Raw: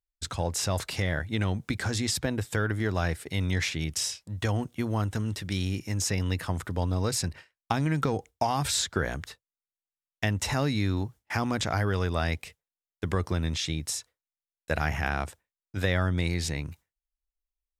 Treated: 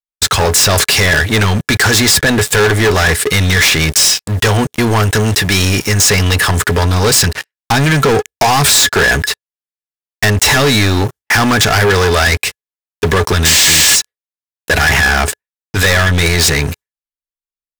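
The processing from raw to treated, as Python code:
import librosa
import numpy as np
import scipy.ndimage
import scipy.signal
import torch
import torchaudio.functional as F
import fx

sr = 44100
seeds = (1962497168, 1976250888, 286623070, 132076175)

y = fx.spec_paint(x, sr, seeds[0], shape='noise', start_s=13.45, length_s=0.51, low_hz=1600.0, high_hz=8600.0, level_db=-28.0)
y = fx.leveller(y, sr, passes=2)
y = fx.tilt_shelf(y, sr, db=-5.5, hz=740.0)
y = fx.small_body(y, sr, hz=(420.0, 1700.0), ring_ms=90, db=12)
y = fx.leveller(y, sr, passes=5)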